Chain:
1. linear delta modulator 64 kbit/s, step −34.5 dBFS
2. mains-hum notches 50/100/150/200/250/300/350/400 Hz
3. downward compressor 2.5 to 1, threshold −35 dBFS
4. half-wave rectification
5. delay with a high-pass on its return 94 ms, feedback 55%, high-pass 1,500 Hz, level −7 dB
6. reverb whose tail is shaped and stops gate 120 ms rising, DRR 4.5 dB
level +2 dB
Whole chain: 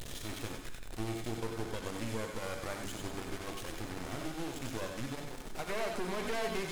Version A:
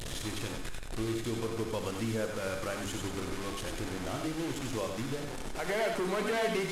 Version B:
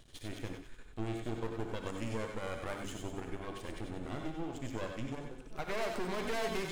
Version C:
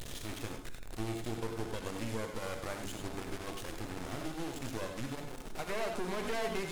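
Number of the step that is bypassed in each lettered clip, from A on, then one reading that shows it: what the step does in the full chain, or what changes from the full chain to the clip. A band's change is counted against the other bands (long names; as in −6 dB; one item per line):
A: 4, distortion level 0 dB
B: 1, 8 kHz band −5.5 dB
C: 5, echo-to-direct ratio −2.5 dB to −4.5 dB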